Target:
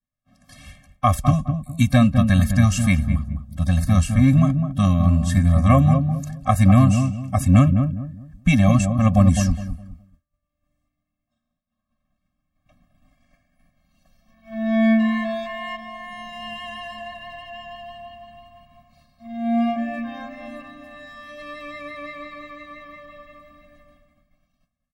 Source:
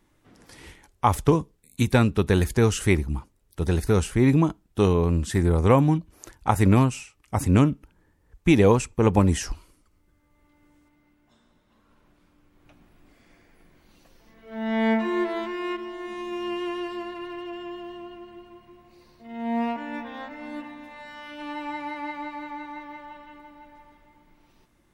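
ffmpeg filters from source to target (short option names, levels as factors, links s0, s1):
-filter_complex "[0:a]asplit=2[s0][s1];[s1]adelay=207,lowpass=f=800:p=1,volume=0.531,asplit=2[s2][s3];[s3]adelay=207,lowpass=f=800:p=1,volume=0.31,asplit=2[s4][s5];[s5]adelay=207,lowpass=f=800:p=1,volume=0.31,asplit=2[s6][s7];[s7]adelay=207,lowpass=f=800:p=1,volume=0.31[s8];[s0][s2][s4][s6][s8]amix=inputs=5:normalize=0,agate=range=0.0224:threshold=0.00447:ratio=3:detection=peak,afftfilt=real='re*eq(mod(floor(b*sr/1024/260),2),0)':imag='im*eq(mod(floor(b*sr/1024/260),2),0)':win_size=1024:overlap=0.75,volume=1.88"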